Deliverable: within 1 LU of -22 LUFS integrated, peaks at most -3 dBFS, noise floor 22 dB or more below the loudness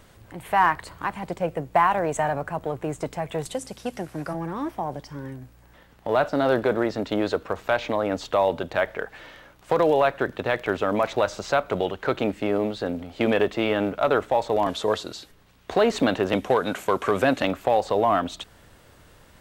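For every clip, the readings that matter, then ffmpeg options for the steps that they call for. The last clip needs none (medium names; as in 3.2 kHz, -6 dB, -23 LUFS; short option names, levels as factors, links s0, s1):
loudness -24.5 LUFS; peak level -6.5 dBFS; loudness target -22.0 LUFS
-> -af "volume=1.33"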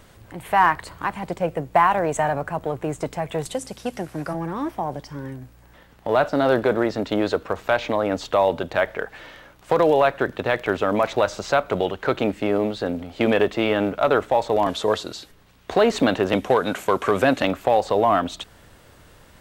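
loudness -22.5 LUFS; peak level -4.0 dBFS; noise floor -51 dBFS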